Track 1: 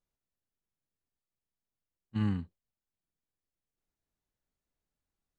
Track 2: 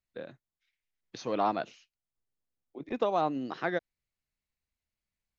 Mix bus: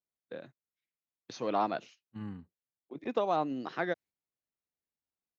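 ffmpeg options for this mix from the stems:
-filter_complex "[0:a]highpass=f=230:p=1,highshelf=f=2.1k:g=-11,volume=-6.5dB[a];[1:a]agate=range=-13dB:threshold=-51dB:ratio=16:detection=peak,highpass=97,adelay=150,volume=-1.5dB[b];[a][b]amix=inputs=2:normalize=0"

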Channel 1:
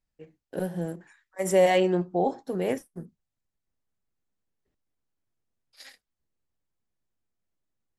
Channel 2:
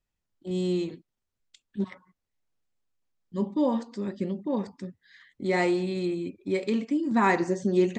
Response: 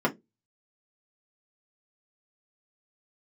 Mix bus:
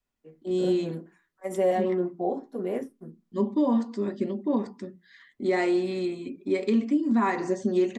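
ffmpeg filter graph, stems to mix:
-filter_complex "[0:a]adelay=50,volume=-14.5dB,asplit=2[a][b];[b]volume=-5.5dB[c];[1:a]adynamicequalizer=threshold=0.0112:dfrequency=350:dqfactor=3.3:tfrequency=350:tqfactor=3.3:attack=5:release=100:ratio=0.375:range=3:mode=cutabove:tftype=bell,volume=-1.5dB,asplit=3[d][e][f];[e]volume=-15dB[g];[f]apad=whole_len=354331[h];[a][h]sidechaincompress=threshold=-42dB:ratio=8:attack=16:release=252[i];[2:a]atrim=start_sample=2205[j];[c][g]amix=inputs=2:normalize=0[k];[k][j]afir=irnorm=-1:irlink=0[l];[i][d][l]amix=inputs=3:normalize=0,alimiter=limit=-15.5dB:level=0:latency=1:release=162"

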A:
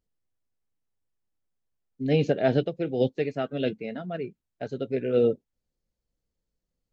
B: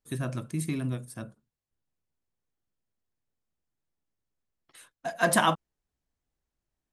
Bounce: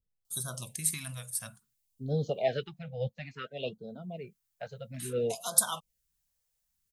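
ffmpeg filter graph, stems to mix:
-filter_complex "[0:a]acrossover=split=440[a][b];[a]aeval=exprs='val(0)*(1-0.7/2+0.7/2*cos(2*PI*1*n/s))':c=same[c];[b]aeval=exprs='val(0)*(1-0.7/2-0.7/2*cos(2*PI*1*n/s))':c=same[d];[c][d]amix=inputs=2:normalize=0,volume=-1.5dB[e];[1:a]acompressor=threshold=-28dB:ratio=6,crystalizer=i=8:c=0,adelay=250,volume=3.5dB,afade=t=out:st=2.29:d=0.56:silence=0.281838,afade=t=in:st=3.76:d=0.62:silence=0.316228[f];[e][f]amix=inputs=2:normalize=0,equalizer=f=300:t=o:w=0.63:g=-15,afftfilt=real='re*(1-between(b*sr/1024,300*pow(2300/300,0.5+0.5*sin(2*PI*0.58*pts/sr))/1.41,300*pow(2300/300,0.5+0.5*sin(2*PI*0.58*pts/sr))*1.41))':imag='im*(1-between(b*sr/1024,300*pow(2300/300,0.5+0.5*sin(2*PI*0.58*pts/sr))/1.41,300*pow(2300/300,0.5+0.5*sin(2*PI*0.58*pts/sr))*1.41))':win_size=1024:overlap=0.75"

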